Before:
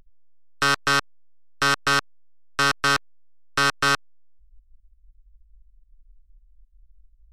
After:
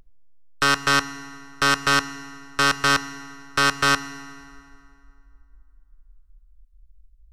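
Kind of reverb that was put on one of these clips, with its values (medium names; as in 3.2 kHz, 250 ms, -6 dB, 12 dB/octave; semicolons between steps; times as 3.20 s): FDN reverb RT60 2.5 s, low-frequency decay 0.95×, high-frequency decay 0.7×, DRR 13 dB; trim +1.5 dB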